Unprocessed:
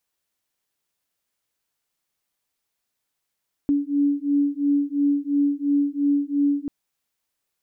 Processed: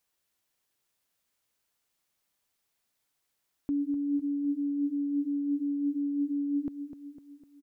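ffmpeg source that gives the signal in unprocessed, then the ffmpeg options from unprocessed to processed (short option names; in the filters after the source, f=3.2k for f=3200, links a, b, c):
-f lavfi -i "aevalsrc='0.0841*(sin(2*PI*284*t)+sin(2*PI*286.9*t))':d=2.99:s=44100"
-af "alimiter=level_in=1dB:limit=-24dB:level=0:latency=1:release=37,volume=-1dB,aecho=1:1:252|504|756|1008|1260|1512:0.316|0.164|0.0855|0.0445|0.0231|0.012"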